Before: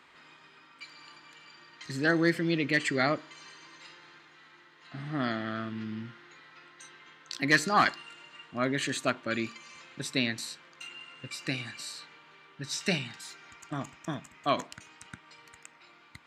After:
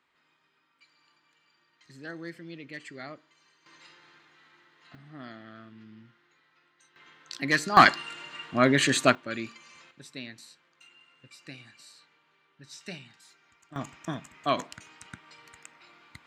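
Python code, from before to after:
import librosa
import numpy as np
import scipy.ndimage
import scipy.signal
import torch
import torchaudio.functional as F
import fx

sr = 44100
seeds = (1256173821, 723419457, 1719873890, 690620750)

y = fx.gain(x, sr, db=fx.steps((0.0, -15.0), (3.66, -3.5), (4.95, -13.0), (6.96, -1.5), (7.77, 8.0), (9.15, -3.0), (9.91, -12.0), (13.76, 1.0)))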